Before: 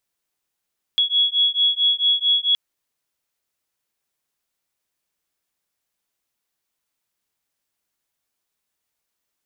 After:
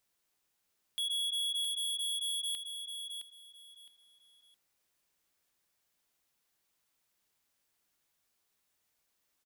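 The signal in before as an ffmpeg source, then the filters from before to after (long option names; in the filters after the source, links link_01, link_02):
-f lavfi -i "aevalsrc='0.112*(sin(2*PI*3350*t)+sin(2*PI*3354.5*t))':duration=1.57:sample_rate=44100"
-filter_complex "[0:a]alimiter=limit=-20dB:level=0:latency=1:release=161,volume=33dB,asoftclip=hard,volume=-33dB,asplit=2[link_01][link_02];[link_02]aecho=0:1:664|1328|1992:0.422|0.105|0.0264[link_03];[link_01][link_03]amix=inputs=2:normalize=0"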